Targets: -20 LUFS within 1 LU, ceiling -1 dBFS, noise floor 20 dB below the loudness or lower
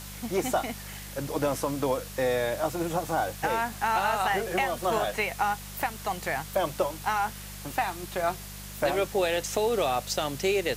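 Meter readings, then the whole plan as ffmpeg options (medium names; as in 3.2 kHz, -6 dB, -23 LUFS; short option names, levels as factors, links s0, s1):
hum 50 Hz; highest harmonic 200 Hz; hum level -41 dBFS; noise floor -41 dBFS; noise floor target -49 dBFS; loudness -28.5 LUFS; peak level -12.5 dBFS; loudness target -20.0 LUFS
-> -af "bandreject=f=50:t=h:w=4,bandreject=f=100:t=h:w=4,bandreject=f=150:t=h:w=4,bandreject=f=200:t=h:w=4"
-af "afftdn=nr=8:nf=-41"
-af "volume=2.66"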